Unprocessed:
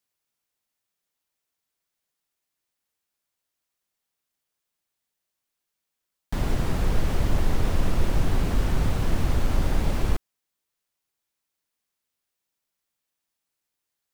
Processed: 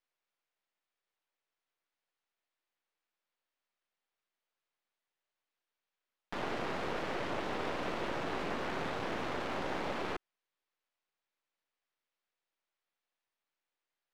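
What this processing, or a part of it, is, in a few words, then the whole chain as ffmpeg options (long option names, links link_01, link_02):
crystal radio: -af "highpass=380,lowpass=3100,aeval=exprs='if(lt(val(0),0),0.251*val(0),val(0))':channel_layout=same,volume=2dB"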